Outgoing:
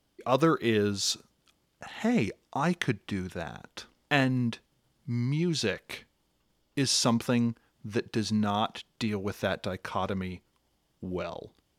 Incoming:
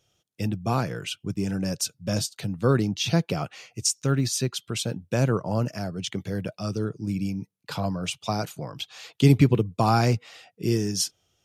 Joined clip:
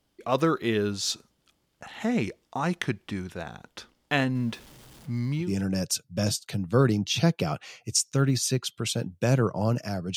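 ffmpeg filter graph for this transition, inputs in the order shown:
ffmpeg -i cue0.wav -i cue1.wav -filter_complex "[0:a]asettb=1/sr,asplit=3[link_01][link_02][link_03];[link_01]atrim=end=4.354[link_04];[link_02]atrim=start=4.35:end=5.54,asetpts=PTS-STARTPTS,afade=type=in:duration=0.004:curve=qsin,afade=type=out:start_time=1.186:duration=0.004:curve=qsin,aeval=exprs='val(0)+0.5*0.00562*sgn(val(0))':channel_layout=same[link_05];[link_03]atrim=start=5.536[link_06];[link_04][link_05]acrossfade=duration=0.004:curve1=hsin:curve2=qsin[link_07];[link_07][link_06]acrossfade=duration=0.004:curve1=qsin:curve2=hsin,apad=whole_dur=10.16,atrim=end=10.16,atrim=end=5.54,asetpts=PTS-STARTPTS[link_08];[1:a]atrim=start=1.28:end=6.06,asetpts=PTS-STARTPTS[link_09];[link_08][link_09]acrossfade=duration=0.16:curve1=tri:curve2=tri" out.wav

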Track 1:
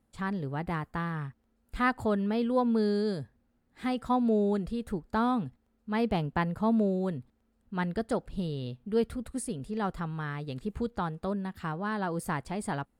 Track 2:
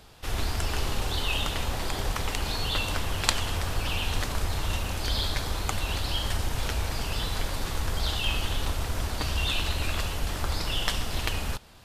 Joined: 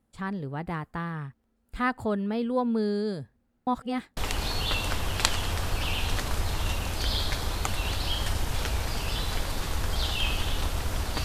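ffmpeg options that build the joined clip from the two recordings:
ffmpeg -i cue0.wav -i cue1.wav -filter_complex "[0:a]apad=whole_dur=11.24,atrim=end=11.24,asplit=2[link_01][link_02];[link_01]atrim=end=3.672[link_03];[link_02]atrim=start=3.668:end=4.172,asetpts=PTS-STARTPTS,areverse[link_04];[1:a]atrim=start=2.208:end=9.28[link_05];[link_03][link_04]acrossfade=duration=0.004:curve1=hsin:curve2=hsin[link_06];[link_06][link_05]acrossfade=duration=0.004:curve1=hsin:curve2=hsin" out.wav

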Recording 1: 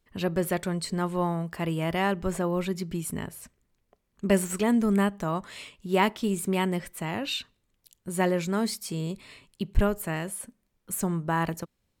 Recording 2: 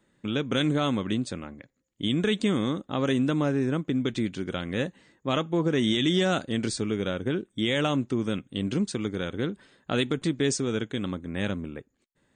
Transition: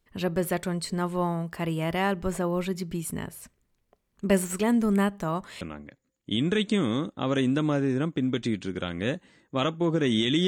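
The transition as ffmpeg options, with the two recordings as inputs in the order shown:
ffmpeg -i cue0.wav -i cue1.wav -filter_complex "[0:a]apad=whole_dur=10.47,atrim=end=10.47,atrim=end=5.612[link_01];[1:a]atrim=start=1.328:end=6.19[link_02];[link_01][link_02]acrossfade=duration=0.004:curve1=hsin:curve2=hsin" out.wav

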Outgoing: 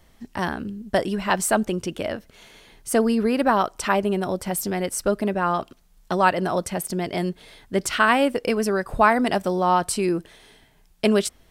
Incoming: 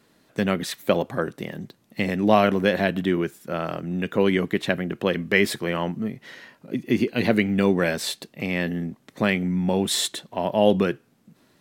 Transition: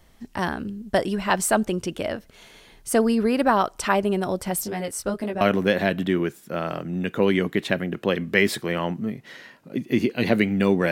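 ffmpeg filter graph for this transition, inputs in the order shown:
ffmpeg -i cue0.wav -i cue1.wav -filter_complex "[0:a]asplit=3[link_01][link_02][link_03];[link_01]afade=type=out:start_time=4.63:duration=0.02[link_04];[link_02]flanger=delay=17.5:depth=2.5:speed=2.3,afade=type=in:start_time=4.63:duration=0.02,afade=type=out:start_time=5.41:duration=0.02[link_05];[link_03]afade=type=in:start_time=5.41:duration=0.02[link_06];[link_04][link_05][link_06]amix=inputs=3:normalize=0,apad=whole_dur=10.91,atrim=end=10.91,atrim=end=5.412[link_07];[1:a]atrim=start=2.388:end=7.89[link_08];[link_07][link_08]acrossfade=duration=0.004:curve1=hsin:curve2=hsin" out.wav

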